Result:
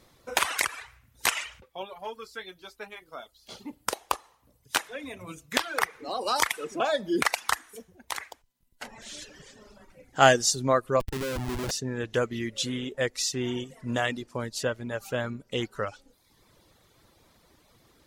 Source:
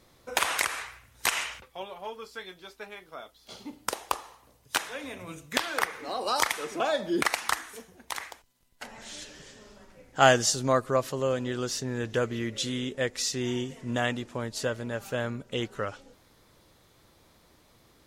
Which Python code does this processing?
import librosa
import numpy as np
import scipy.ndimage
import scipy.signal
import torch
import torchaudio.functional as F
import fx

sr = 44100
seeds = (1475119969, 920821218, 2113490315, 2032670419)

y = fx.schmitt(x, sr, flips_db=-31.0, at=(11.0, 11.71))
y = fx.dereverb_blind(y, sr, rt60_s=0.83)
y = F.gain(torch.from_numpy(y), 1.5).numpy()